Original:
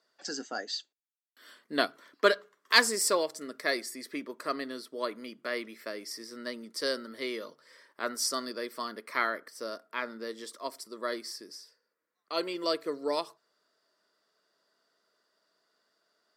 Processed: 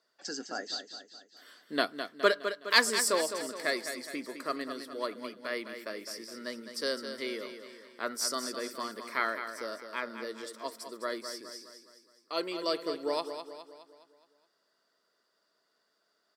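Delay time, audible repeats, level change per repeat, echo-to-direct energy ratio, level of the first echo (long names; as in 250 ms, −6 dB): 208 ms, 5, −6.0 dB, −8.0 dB, −9.0 dB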